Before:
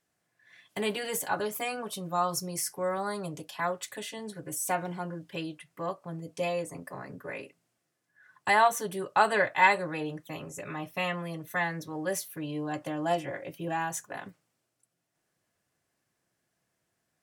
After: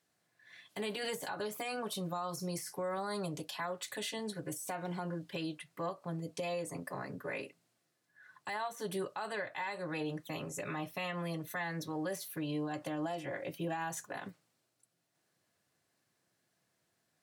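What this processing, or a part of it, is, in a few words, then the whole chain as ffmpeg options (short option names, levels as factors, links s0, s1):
broadcast voice chain: -af "highpass=86,deesser=0.7,acompressor=threshold=0.0251:ratio=5,equalizer=f=4100:t=o:w=0.41:g=5,alimiter=level_in=1.78:limit=0.0631:level=0:latency=1:release=62,volume=0.562"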